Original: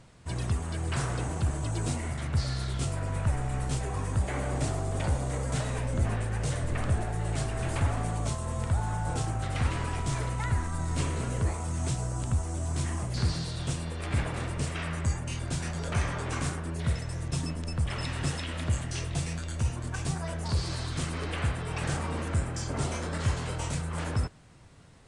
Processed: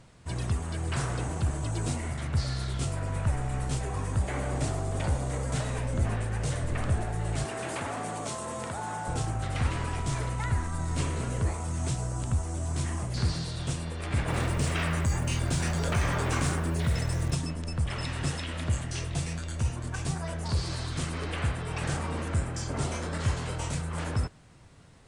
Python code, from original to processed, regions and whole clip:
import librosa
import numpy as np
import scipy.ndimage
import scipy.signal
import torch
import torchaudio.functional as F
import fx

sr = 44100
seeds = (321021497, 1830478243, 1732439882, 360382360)

y = fx.chain(x, sr, fx.highpass(hz=240.0, slope=12),
    fx.env_flatten(amount_pct=50), at=(7.45, 9.08))
y = fx.chain(y, sr, fx.quant_float(bits=4),
    fx.env_flatten(amount_pct=50), at=(14.28, 17.35))